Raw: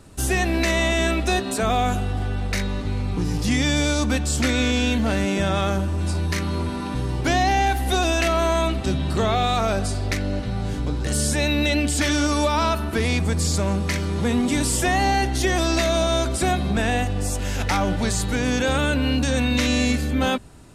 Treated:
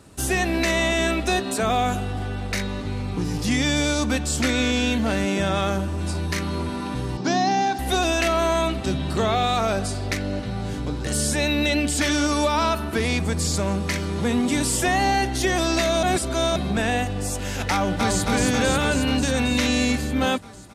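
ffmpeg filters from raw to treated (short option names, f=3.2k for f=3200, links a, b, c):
-filter_complex "[0:a]asettb=1/sr,asplit=3[a][b][c];[a]atrim=end=7.174[d];[b]atrim=start=7.17:end=7.79,asetpts=PTS-STARTPTS,afade=t=in:d=0.004:c=qsin,afade=t=out:st=0.616:d=0.004:c=qsin,highpass=f=150:w=0.5412,highpass=f=150:w=1.3066,equalizer=f=190:t=q:w=4:g=10,equalizer=f=520:t=q:w=4:g=-6,equalizer=f=1.4k:t=q:w=4:g=-3,equalizer=f=2.1k:t=q:w=4:g=-9,equalizer=f=3k:t=q:w=4:g=-7,equalizer=f=5.3k:t=q:w=4:g=5,lowpass=f=6.4k:w=0.5412,lowpass=f=6.4k:w=1.3066[e];[c]atrim=start=7.786[f];[d][e]acrossfade=d=0.004:c1=hsin:c2=qsin[g];[g][f]acrossfade=d=0.004:c1=qsin:c2=hsin,asplit=2[h][i];[i]afade=t=in:st=17.72:d=0.01,afade=t=out:st=18.24:d=0.01,aecho=0:1:270|540|810|1080|1350|1620|1890|2160|2430|2700|2970|3240:0.794328|0.595746|0.44681|0.335107|0.25133|0.188498|0.141373|0.10603|0.0795225|0.0596419|0.0447314|0.0335486[j];[h][j]amix=inputs=2:normalize=0,asplit=3[k][l][m];[k]atrim=end=16.032[n];[l]atrim=start=16.028:end=16.562,asetpts=PTS-STARTPTS,areverse[o];[m]atrim=start=16.558[p];[n][o]acrossfade=d=0.004:c1=hsin:c2=hsin[q];[q][p]acrossfade=d=0.004:c1=hsin:c2=hsin,highpass=f=93:p=1"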